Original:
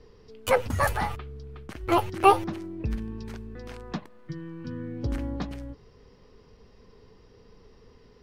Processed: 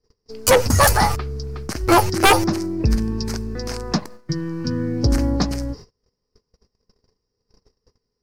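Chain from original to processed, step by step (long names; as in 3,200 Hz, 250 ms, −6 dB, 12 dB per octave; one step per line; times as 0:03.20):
noise gate −48 dBFS, range −36 dB
high shelf with overshoot 4,100 Hz +7 dB, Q 3
sine wavefolder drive 11 dB, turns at −5 dBFS
level −2.5 dB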